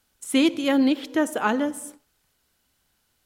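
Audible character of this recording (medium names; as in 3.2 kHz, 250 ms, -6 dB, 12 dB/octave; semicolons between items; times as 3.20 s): noise floor -71 dBFS; spectral tilt -3.0 dB/octave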